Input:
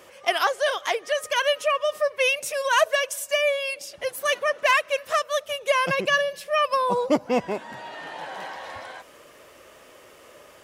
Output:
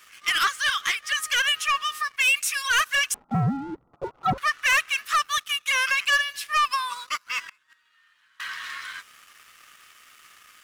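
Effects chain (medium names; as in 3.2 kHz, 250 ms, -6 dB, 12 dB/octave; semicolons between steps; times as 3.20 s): elliptic high-pass 1.2 kHz, stop band 40 dB; 3.14–4.38 s: frequency inversion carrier 2.5 kHz; in parallel at -4 dB: saturation -22.5 dBFS, distortion -12 dB; on the sum: waveshaping leveller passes 2; 7.49–8.40 s: inverted gate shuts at -24 dBFS, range -28 dB; trim -4.5 dB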